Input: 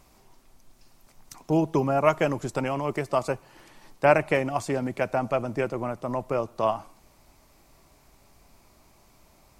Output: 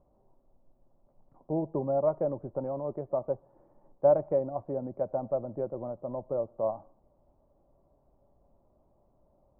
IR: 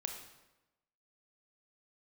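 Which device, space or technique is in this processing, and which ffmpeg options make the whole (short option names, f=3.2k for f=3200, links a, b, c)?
under water: -af "lowpass=f=870:w=0.5412,lowpass=f=870:w=1.3066,equalizer=f=560:t=o:w=0.24:g=10,volume=-8.5dB"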